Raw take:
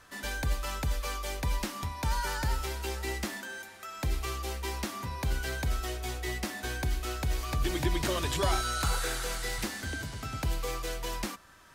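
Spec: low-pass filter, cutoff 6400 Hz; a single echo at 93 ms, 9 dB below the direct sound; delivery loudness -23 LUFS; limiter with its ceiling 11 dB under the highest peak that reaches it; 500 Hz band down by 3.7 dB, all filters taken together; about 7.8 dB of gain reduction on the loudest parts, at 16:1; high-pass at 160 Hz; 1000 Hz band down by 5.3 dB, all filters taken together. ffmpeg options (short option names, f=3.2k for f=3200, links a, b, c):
-af "highpass=160,lowpass=6.4k,equalizer=f=500:t=o:g=-3.5,equalizer=f=1k:t=o:g=-6,acompressor=threshold=-37dB:ratio=16,alimiter=level_in=10.5dB:limit=-24dB:level=0:latency=1,volume=-10.5dB,aecho=1:1:93:0.355,volume=20dB"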